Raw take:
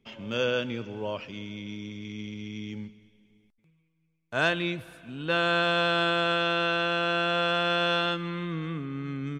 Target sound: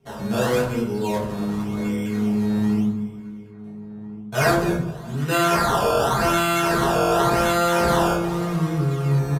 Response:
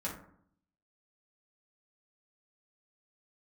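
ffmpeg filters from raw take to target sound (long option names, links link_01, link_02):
-filter_complex "[0:a]asettb=1/sr,asplit=3[link_01][link_02][link_03];[link_01]atrim=end=5.554[link_04];[link_02]atrim=start=5.55:end=6.21,asetpts=PTS-STARTPTS,afade=type=in:duration=0.004:curve=qsin,afade=type=out:start_time=0.656:duration=0.004:curve=qsin,highpass=frequency=860:width=0.5412,highpass=frequency=860:width=1.3066[link_05];[link_03]atrim=start=6.206[link_06];[link_04][link_05]acrossfade=duration=0.004:curve1=hsin:curve2=qsin[link_07];[link_07][link_06]acrossfade=duration=0.004:curve1=qsin:curve2=hsin,asplit=2[link_08][link_09];[link_09]acompressor=threshold=-41dB:ratio=6,volume=2dB[link_10];[link_08][link_10]amix=inputs=2:normalize=0,acrusher=samples=15:mix=1:aa=0.000001:lfo=1:lforange=15:lforate=0.89,asettb=1/sr,asplit=3[link_11][link_12][link_13];[link_11]atrim=end=1.754[link_14];[link_12]atrim=start=1.75:end=2.74,asetpts=PTS-STARTPTS,afade=type=in:duration=0.004:curve=qsin,afade=type=out:start_time=0.986:duration=0.004:curve=qsin,asplit=2[link_15][link_16];[link_16]adelay=29,volume=-6.5dB[link_17];[link_15][link_17]amix=inputs=2:normalize=0,atrim=end_sample=43659[link_18];[link_13]atrim=start=2.736[link_19];[link_14][link_18]acrossfade=duration=0.004:curve1=hsin:curve2=qsin[link_20];[link_20][link_19]acrossfade=duration=0.004:curve1=qsin:curve2=hsin,asplit=2[link_21][link_22];[link_22]adelay=1399,volume=-15dB,highshelf=frequency=4000:gain=-31.5[link_23];[link_21][link_23]amix=inputs=2:normalize=0[link_24];[1:a]atrim=start_sample=2205,asetrate=32634,aresample=44100[link_25];[link_24][link_25]afir=irnorm=-1:irlink=0,aresample=32000,aresample=44100"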